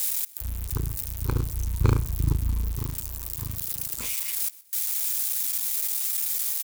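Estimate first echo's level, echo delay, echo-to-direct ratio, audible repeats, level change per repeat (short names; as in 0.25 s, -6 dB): -21.5 dB, 0.125 s, -21.0 dB, 2, -9.0 dB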